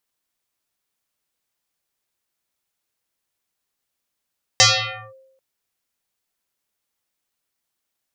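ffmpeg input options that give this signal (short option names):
-f lavfi -i "aevalsrc='0.447*pow(10,-3*t/0.88)*sin(2*PI*530*t+9.9*clip(1-t/0.53,0,1)*sin(2*PI*1.21*530*t))':d=0.79:s=44100"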